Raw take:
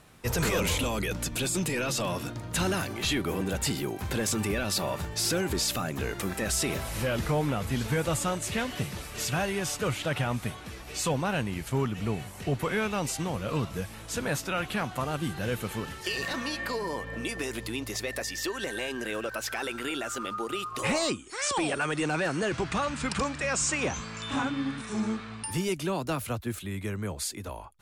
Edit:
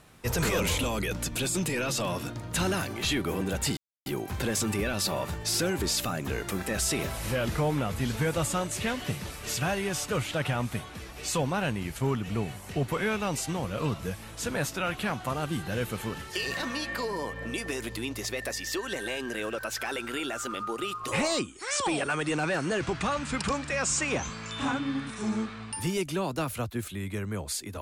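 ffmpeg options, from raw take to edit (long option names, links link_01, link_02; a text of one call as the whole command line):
ffmpeg -i in.wav -filter_complex "[0:a]asplit=2[link_01][link_02];[link_01]atrim=end=3.77,asetpts=PTS-STARTPTS,afade=type=out:start_time=3.766:duration=0.004:curve=hsin,apad=pad_dur=0.29[link_03];[link_02]atrim=start=3.77,asetpts=PTS-STARTPTS,afade=type=in:duration=0.004:curve=hsin[link_04];[link_03][link_04]concat=n=2:v=0:a=1" out.wav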